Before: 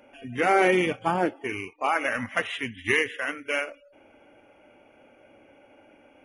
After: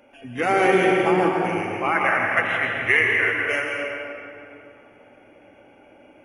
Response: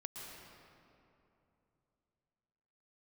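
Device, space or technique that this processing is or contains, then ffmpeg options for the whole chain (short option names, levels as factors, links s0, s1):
stairwell: -filter_complex "[0:a]asettb=1/sr,asplit=3[s0][s1][s2];[s0]atrim=end=1.794[s3];[s1]atrim=start=1.79:end=3.33,asetpts=PTS-STARTPTS,afade=t=in:d=0.004:c=qsin,afade=t=out:st=1.536:d=0.004:c=qsin,equalizer=f=250:t=o:w=1:g=-7,equalizer=f=2000:t=o:w=1:g=8,equalizer=f=4000:t=o:w=1:g=-8,equalizer=f=8000:t=o:w=1:g=-8[s4];[s2]atrim=start=3.326[s5];[s3][s4]acrossfade=d=0.004:c1=hsin:c2=qsin[s6];[s6][s5]acrossfade=d=0.004:c1=qsin:c2=hsin[s7];[1:a]atrim=start_sample=2205[s8];[s7][s8]afir=irnorm=-1:irlink=0,volume=2"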